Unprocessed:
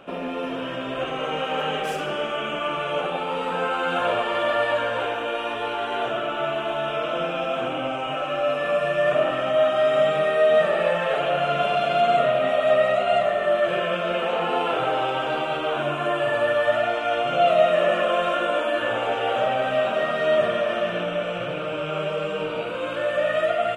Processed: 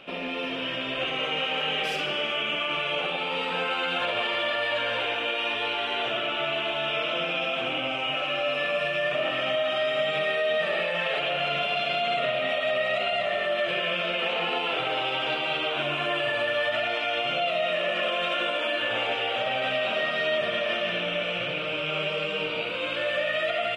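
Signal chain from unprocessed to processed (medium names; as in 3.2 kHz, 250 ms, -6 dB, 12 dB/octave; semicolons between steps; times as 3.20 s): high-order bell 3.2 kHz +11 dB; peak limiter -13.5 dBFS, peak gain reduction 8 dB; trim -4.5 dB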